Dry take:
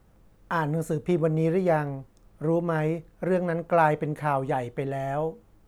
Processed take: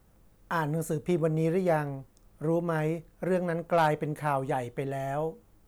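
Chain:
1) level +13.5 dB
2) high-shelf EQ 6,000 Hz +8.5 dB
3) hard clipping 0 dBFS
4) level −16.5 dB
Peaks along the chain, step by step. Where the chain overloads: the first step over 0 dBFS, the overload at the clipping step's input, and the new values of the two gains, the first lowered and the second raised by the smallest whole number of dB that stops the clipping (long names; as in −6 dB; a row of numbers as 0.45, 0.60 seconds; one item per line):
+4.5, +5.0, 0.0, −16.5 dBFS
step 1, 5.0 dB
step 1 +8.5 dB, step 4 −11.5 dB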